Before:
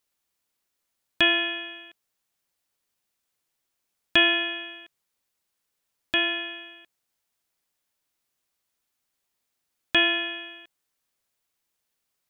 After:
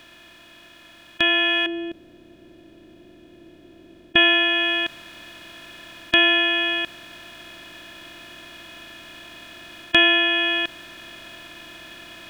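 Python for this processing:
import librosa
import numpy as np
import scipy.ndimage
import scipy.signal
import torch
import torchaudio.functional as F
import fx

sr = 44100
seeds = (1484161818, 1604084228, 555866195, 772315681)

y = fx.bin_compress(x, sr, power=0.4)
y = fx.rider(y, sr, range_db=10, speed_s=0.5)
y = fx.curve_eq(y, sr, hz=(180.0, 370.0, 1100.0), db=(0, 5, -17), at=(1.66, 4.16))
y = F.gain(torch.from_numpy(y), 2.5).numpy()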